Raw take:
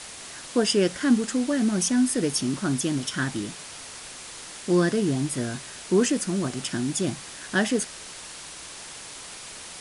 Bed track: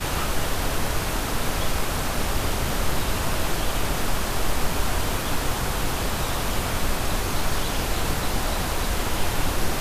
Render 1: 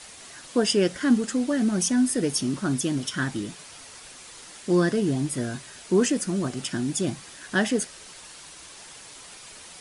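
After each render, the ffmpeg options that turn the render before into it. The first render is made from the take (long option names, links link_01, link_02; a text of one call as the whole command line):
ffmpeg -i in.wav -af "afftdn=noise_reduction=6:noise_floor=-41" out.wav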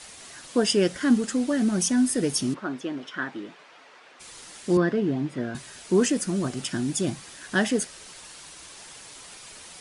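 ffmpeg -i in.wav -filter_complex "[0:a]asplit=3[link_01][link_02][link_03];[link_01]afade=type=out:start_time=2.53:duration=0.02[link_04];[link_02]highpass=360,lowpass=2300,afade=type=in:start_time=2.53:duration=0.02,afade=type=out:start_time=4.19:duration=0.02[link_05];[link_03]afade=type=in:start_time=4.19:duration=0.02[link_06];[link_04][link_05][link_06]amix=inputs=3:normalize=0,asettb=1/sr,asplit=3[link_07][link_08][link_09];[link_07]atrim=end=4.774[link_10];[link_08]atrim=start=4.77:end=5.55,asetpts=PTS-STARTPTS,afade=type=in:duration=0.004:curve=qsin,afade=type=out:start_time=0.776:duration=0.004:curve=qsin,highpass=150,lowpass=2600[link_11];[link_09]atrim=start=5.546[link_12];[link_10][link_11]acrossfade=duration=0.004:curve1=hsin:curve2=qsin[link_13];[link_13][link_12]acrossfade=duration=0.004:curve1=qsin:curve2=hsin" out.wav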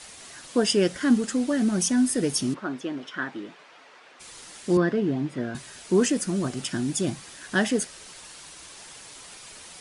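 ffmpeg -i in.wav -af anull out.wav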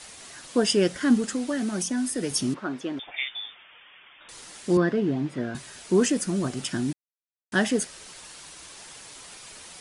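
ffmpeg -i in.wav -filter_complex "[0:a]asettb=1/sr,asplit=3[link_01][link_02][link_03];[link_01]atrim=end=1.334[link_04];[link_02]atrim=start=1.33:end=2.31,asetpts=PTS-STARTPTS,afade=type=in:duration=0.004:curve=qsin,afade=type=out:start_time=0.976:duration=0.004:curve=qsin,acrossover=split=120|240|660[link_05][link_06][link_07][link_08];[link_05]acompressor=threshold=-52dB:ratio=3[link_09];[link_06]acompressor=threshold=-36dB:ratio=3[link_10];[link_07]acompressor=threshold=-31dB:ratio=3[link_11];[link_08]acompressor=threshold=-29dB:ratio=3[link_12];[link_09][link_10][link_11][link_12]amix=inputs=4:normalize=0[link_13];[link_03]atrim=start=2.306[link_14];[link_04][link_13]acrossfade=duration=0.004:curve1=hsin:curve2=qsin[link_15];[link_15][link_14]acrossfade=duration=0.004:curve1=qsin:curve2=hsin,asettb=1/sr,asplit=3[link_16][link_17][link_18];[link_16]atrim=end=2.994[link_19];[link_17]atrim=start=2.99:end=4.29,asetpts=PTS-STARTPTS,afade=type=in:duration=0.004:curve=qsin,afade=type=out:start_time=1.296:duration=0.004:curve=qsin,lowpass=frequency=3200:width_type=q:width=0.5098,lowpass=frequency=3200:width_type=q:width=0.6013,lowpass=frequency=3200:width_type=q:width=0.9,lowpass=frequency=3200:width_type=q:width=2.563,afreqshift=-3800[link_20];[link_18]atrim=start=4.286[link_21];[link_19][link_20]acrossfade=duration=0.004:curve1=hsin:curve2=qsin[link_22];[link_22][link_21]acrossfade=duration=0.004:curve1=qsin:curve2=hsin,asplit=3[link_23][link_24][link_25];[link_23]atrim=end=6.93,asetpts=PTS-STARTPTS,afade=type=out:start_time=6.926:duration=0.004:curve=hsin[link_26];[link_24]atrim=start=6.93:end=7.52,asetpts=PTS-STARTPTS,volume=0[link_27];[link_25]atrim=start=7.52,asetpts=PTS-STARTPTS,afade=type=in:duration=0.004:curve=hsin[link_28];[link_26][link_27][link_28]concat=n=3:v=0:a=1" out.wav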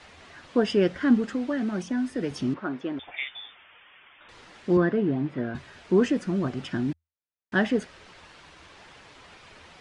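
ffmpeg -i in.wav -af "lowpass=2700,equalizer=frequency=82:width_type=o:width=0.26:gain=10" out.wav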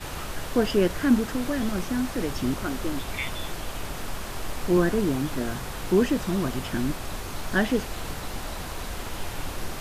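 ffmpeg -i in.wav -i bed.wav -filter_complex "[1:a]volume=-9dB[link_01];[0:a][link_01]amix=inputs=2:normalize=0" out.wav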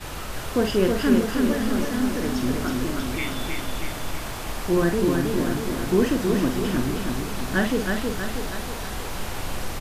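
ffmpeg -i in.wav -filter_complex "[0:a]asplit=2[link_01][link_02];[link_02]adelay=47,volume=-7dB[link_03];[link_01][link_03]amix=inputs=2:normalize=0,aecho=1:1:319|638|957|1276|1595|1914|2233|2552:0.631|0.353|0.198|0.111|0.0621|0.0347|0.0195|0.0109" out.wav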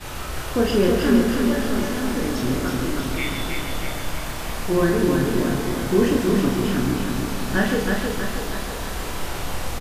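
ffmpeg -i in.wav -filter_complex "[0:a]asplit=2[link_01][link_02];[link_02]adelay=30,volume=-3.5dB[link_03];[link_01][link_03]amix=inputs=2:normalize=0,asplit=2[link_04][link_05];[link_05]adelay=134.1,volume=-7dB,highshelf=frequency=4000:gain=-3.02[link_06];[link_04][link_06]amix=inputs=2:normalize=0" out.wav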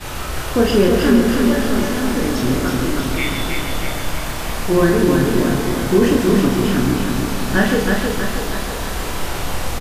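ffmpeg -i in.wav -af "volume=5dB,alimiter=limit=-3dB:level=0:latency=1" out.wav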